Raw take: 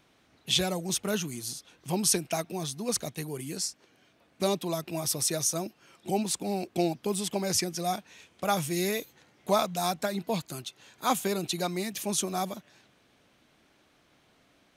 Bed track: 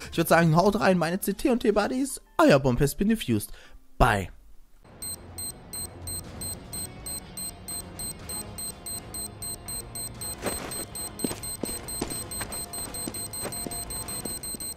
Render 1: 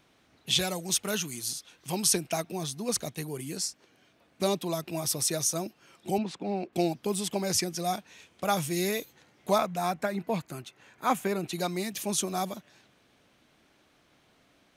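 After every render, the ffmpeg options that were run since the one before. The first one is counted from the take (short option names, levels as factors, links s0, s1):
-filter_complex "[0:a]asettb=1/sr,asplit=3[s0][s1][s2];[s0]atrim=end=0.594[s3];[s1]atrim=start=0.59:end=2.07,asetpts=PTS-STARTPTS,afade=t=in:d=0.004:c=qsin,afade=t=out:st=1.476:d=0.004:c=qsin,tiltshelf=f=1100:g=-3.5[s4];[s2]atrim=start=2.066[s5];[s3][s4]acrossfade=d=0.004:c1=hsin:c2=qsin[s6];[s6][s5]acrossfade=d=0.004:c1=qsin:c2=hsin,asettb=1/sr,asplit=3[s7][s8][s9];[s7]atrim=end=6.184[s10];[s8]atrim=start=6.18:end=6.73,asetpts=PTS-STARTPTS,afade=t=in:d=0.004:c=qsin,afade=t=out:st=0.546:d=0.004:c=qsin,highpass=130,lowpass=2700[s11];[s9]atrim=start=6.726[s12];[s10][s11]acrossfade=d=0.004:c1=hsin:c2=qsin[s13];[s13][s12]acrossfade=d=0.004:c1=qsin:c2=hsin,asettb=1/sr,asplit=3[s14][s15][s16];[s14]atrim=end=9.584[s17];[s15]atrim=start=9.58:end=11.53,asetpts=PTS-STARTPTS,afade=t=in:d=0.004:c=qsin,afade=t=out:st=1.946:d=0.004:c=qsin,highshelf=f=2800:t=q:w=1.5:g=-6.5[s18];[s16]atrim=start=11.526[s19];[s17][s18]acrossfade=d=0.004:c1=hsin:c2=qsin[s20];[s20][s19]acrossfade=d=0.004:c1=qsin:c2=hsin"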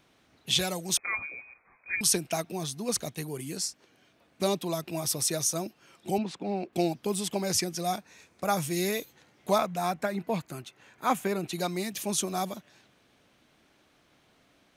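-filter_complex "[0:a]asettb=1/sr,asplit=3[s0][s1][s2];[s0]atrim=end=0.974[s3];[s1]atrim=start=0.97:end=2.01,asetpts=PTS-STARTPTS,afade=t=in:d=0.004:c=qsin,afade=t=out:st=1.036:d=0.004:c=qsin,lowpass=f=2200:t=q:w=0.5098,lowpass=f=2200:t=q:w=0.6013,lowpass=f=2200:t=q:w=0.9,lowpass=f=2200:t=q:w=2.563,afreqshift=-2600[s4];[s2]atrim=start=2.006[s5];[s3][s4]acrossfade=d=0.004:c1=hsin:c2=qsin[s6];[s6][s5]acrossfade=d=0.004:c1=qsin:c2=hsin,asettb=1/sr,asplit=3[s7][s8][s9];[s7]atrim=end=7.984[s10];[s8]atrim=start=7.98:end=8.62,asetpts=PTS-STARTPTS,afade=t=in:d=0.004:c=qsin,afade=t=out:st=0.636:d=0.004:c=qsin,equalizer=f=3100:w=4.5:g=-12[s11];[s9]atrim=start=8.616[s12];[s10][s11]acrossfade=d=0.004:c1=hsin:c2=qsin[s13];[s13][s12]acrossfade=d=0.004:c1=qsin:c2=hsin"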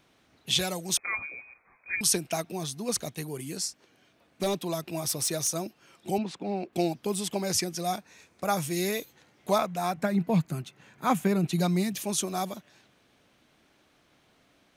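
-filter_complex "[0:a]asettb=1/sr,asplit=3[s0][s1][s2];[s0]atrim=end=4.434[s3];[s1]atrim=start=4.43:end=5.48,asetpts=PTS-STARTPTS,afade=t=in:d=0.004:c=qsin,afade=t=out:st=1.046:d=0.004:c=qsin,asoftclip=type=hard:threshold=0.0794[s4];[s2]atrim=start=5.476[s5];[s3][s4]acrossfade=d=0.004:c1=hsin:c2=qsin[s6];[s6][s5]acrossfade=d=0.004:c1=qsin:c2=hsin,asettb=1/sr,asplit=3[s7][s8][s9];[s7]atrim=end=9.974[s10];[s8]atrim=start=9.97:end=11.96,asetpts=PTS-STARTPTS,afade=t=in:d=0.004:c=qsin,afade=t=out:st=1.986:d=0.004:c=qsin,equalizer=f=160:w=1.5:g=12[s11];[s9]atrim=start=11.956[s12];[s10][s11]acrossfade=d=0.004:c1=hsin:c2=qsin[s13];[s13][s12]acrossfade=d=0.004:c1=qsin:c2=hsin"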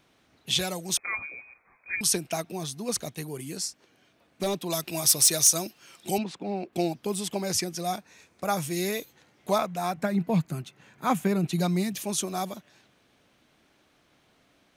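-filter_complex "[0:a]asettb=1/sr,asplit=3[s0][s1][s2];[s0]atrim=end=4.704[s3];[s1]atrim=start=4.7:end=6.24,asetpts=PTS-STARTPTS,afade=t=in:d=0.004:c=qsin,afade=t=out:st=1.536:d=0.004:c=qsin,highshelf=f=2100:g=10.5[s4];[s2]atrim=start=6.236[s5];[s3][s4]acrossfade=d=0.004:c1=hsin:c2=qsin[s6];[s6][s5]acrossfade=d=0.004:c1=qsin:c2=hsin"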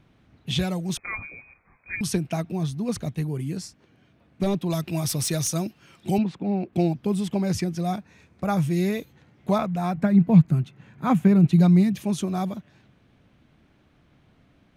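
-af "bass=f=250:g=14,treble=f=4000:g=-10"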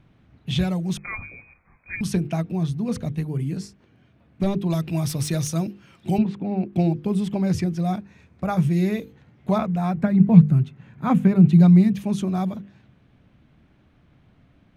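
-af "bass=f=250:g=5,treble=f=4000:g=-5,bandreject=f=50:t=h:w=6,bandreject=f=100:t=h:w=6,bandreject=f=150:t=h:w=6,bandreject=f=200:t=h:w=6,bandreject=f=250:t=h:w=6,bandreject=f=300:t=h:w=6,bandreject=f=350:t=h:w=6,bandreject=f=400:t=h:w=6,bandreject=f=450:t=h:w=6,bandreject=f=500:t=h:w=6"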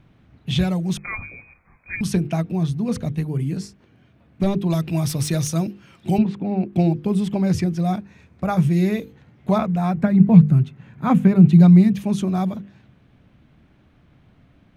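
-af "volume=1.33,alimiter=limit=0.891:level=0:latency=1"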